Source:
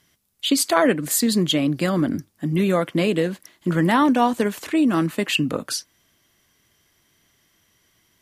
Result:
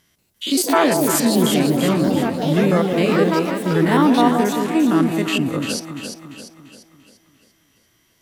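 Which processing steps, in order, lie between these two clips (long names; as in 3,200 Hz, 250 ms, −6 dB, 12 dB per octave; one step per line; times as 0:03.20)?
spectrum averaged block by block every 50 ms
delay with pitch and tempo change per echo 186 ms, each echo +5 semitones, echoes 2, each echo −6 dB
delay that swaps between a low-pass and a high-pass 172 ms, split 830 Hz, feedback 68%, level −3.5 dB
level +2 dB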